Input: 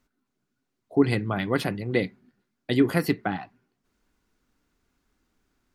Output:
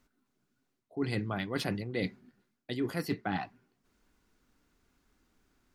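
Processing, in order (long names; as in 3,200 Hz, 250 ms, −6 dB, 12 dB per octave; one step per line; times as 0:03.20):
dynamic equaliser 5,400 Hz, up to +6 dB, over −52 dBFS, Q 1.2
reversed playback
downward compressor 12 to 1, threshold −30 dBFS, peak gain reduction 17 dB
reversed playback
level +1 dB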